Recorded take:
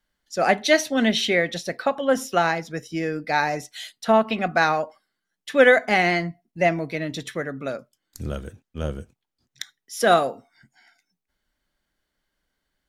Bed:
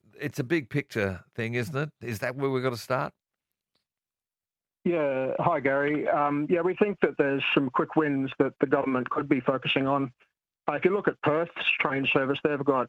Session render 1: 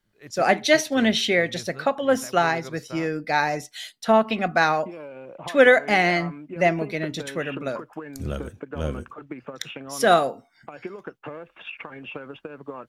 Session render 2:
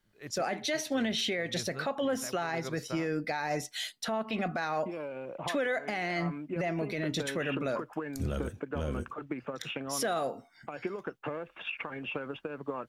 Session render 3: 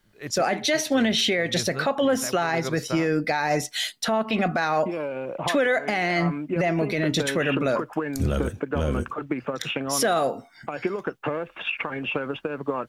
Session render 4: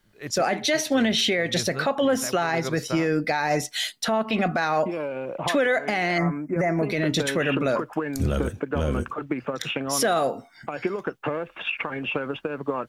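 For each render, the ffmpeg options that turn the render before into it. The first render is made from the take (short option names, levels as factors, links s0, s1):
-filter_complex "[1:a]volume=0.237[s0];[0:a][s0]amix=inputs=2:normalize=0"
-af "acompressor=threshold=0.0631:ratio=6,alimiter=limit=0.0708:level=0:latency=1:release=11"
-af "volume=2.82"
-filter_complex "[0:a]asettb=1/sr,asplit=3[s0][s1][s2];[s0]atrim=end=6.184[s3];[s1]atrim=start=6.18:end=6.83,asetpts=PTS-STARTPTS,afade=t=in:d=0.004:c=qsin,afade=t=out:st=0.646:d=0.004:c=qsin,asuperstop=centerf=3500:order=8:qfactor=1.1[s4];[s2]atrim=start=6.826[s5];[s3][s4]acrossfade=d=0.004:c1=hsin:c2=qsin[s6];[s6][s5]acrossfade=d=0.004:c1=qsin:c2=hsin"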